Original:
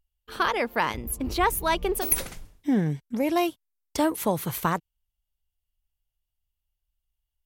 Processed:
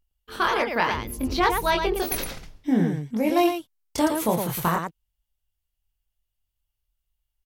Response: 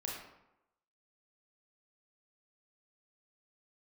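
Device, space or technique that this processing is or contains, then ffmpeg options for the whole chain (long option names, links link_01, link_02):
slapback doubling: -filter_complex "[0:a]asplit=3[link_01][link_02][link_03];[link_02]adelay=23,volume=-3.5dB[link_04];[link_03]adelay=112,volume=-5dB[link_05];[link_01][link_04][link_05]amix=inputs=3:normalize=0,asettb=1/sr,asplit=3[link_06][link_07][link_08];[link_06]atrim=end=0.644[link_09];[link_07]atrim=start=0.64:end=2.68,asetpts=PTS-STARTPTS,afade=type=in:duration=0.004:curve=qsin,afade=type=out:start_time=2.036:duration=0.004:curve=qsin,highshelf=frequency=6500:width_type=q:width=1.5:gain=-6.5[link_10];[link_08]atrim=start=2.676[link_11];[link_09][link_10]acrossfade=duration=0.004:curve1=hsin:curve2=qsin[link_12];[link_12][link_11]acrossfade=duration=0.004:curve1=qsin:curve2=hsin"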